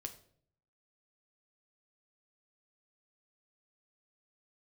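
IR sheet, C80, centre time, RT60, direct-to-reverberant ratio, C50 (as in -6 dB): 16.5 dB, 8 ms, 0.60 s, 6.0 dB, 13.0 dB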